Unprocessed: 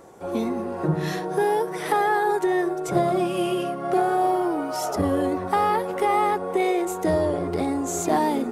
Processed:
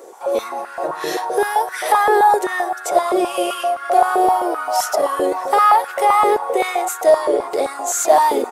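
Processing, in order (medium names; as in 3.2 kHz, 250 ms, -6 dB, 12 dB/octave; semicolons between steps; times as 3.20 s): treble shelf 3.3 kHz +9.5 dB; delay 643 ms -23 dB; on a send at -18 dB: reverberation RT60 1.1 s, pre-delay 3 ms; on the sum: step-sequenced high-pass 7.7 Hz 440–1500 Hz; trim +1.5 dB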